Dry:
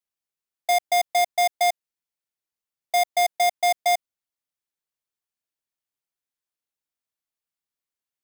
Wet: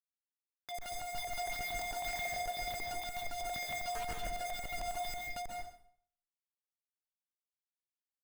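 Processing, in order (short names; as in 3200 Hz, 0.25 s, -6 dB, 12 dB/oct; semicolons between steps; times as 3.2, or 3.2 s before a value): regenerating reverse delay 0.274 s, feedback 51%, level -5 dB; graphic EQ 125/250/500/1000/2000/4000 Hz -7/-4/-11/-7/+5/-12 dB; compressor 4:1, threshold -41 dBFS, peak gain reduction 16 dB; Schmitt trigger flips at -50 dBFS; outdoor echo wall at 20 m, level -26 dB; phaser stages 6, 2 Hz, lowest notch 100–1000 Hz; sample leveller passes 5; plate-style reverb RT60 0.59 s, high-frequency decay 0.85×, pre-delay 0.12 s, DRR 0 dB; gain -1.5 dB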